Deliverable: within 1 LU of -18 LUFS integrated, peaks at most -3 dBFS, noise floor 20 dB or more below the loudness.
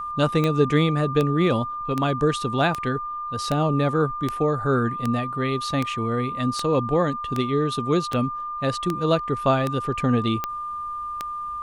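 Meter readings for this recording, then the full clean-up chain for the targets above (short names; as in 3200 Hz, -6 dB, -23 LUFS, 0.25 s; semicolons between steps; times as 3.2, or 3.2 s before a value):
clicks 15; steady tone 1200 Hz; tone level -28 dBFS; loudness -23.5 LUFS; peak -7.0 dBFS; loudness target -18.0 LUFS
-> de-click; notch 1200 Hz, Q 30; gain +5.5 dB; limiter -3 dBFS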